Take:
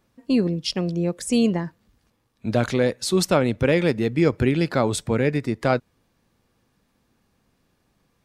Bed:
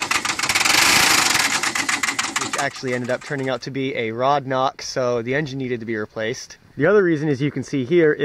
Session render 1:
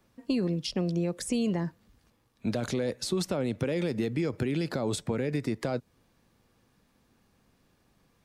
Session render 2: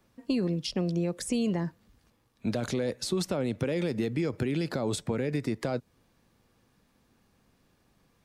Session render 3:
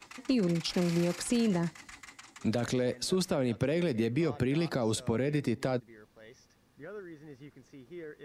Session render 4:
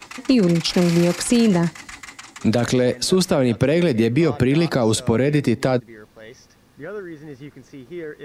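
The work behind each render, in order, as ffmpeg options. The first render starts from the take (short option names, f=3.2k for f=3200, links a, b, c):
-filter_complex "[0:a]alimiter=limit=-16dB:level=0:latency=1:release=40,acrossover=split=110|750|3900[a][b][c][d];[a]acompressor=threshold=-48dB:ratio=4[e];[b]acompressor=threshold=-26dB:ratio=4[f];[c]acompressor=threshold=-42dB:ratio=4[g];[d]acompressor=threshold=-37dB:ratio=4[h];[e][f][g][h]amix=inputs=4:normalize=0"
-af anull
-filter_complex "[1:a]volume=-29dB[a];[0:a][a]amix=inputs=2:normalize=0"
-af "volume=12dB"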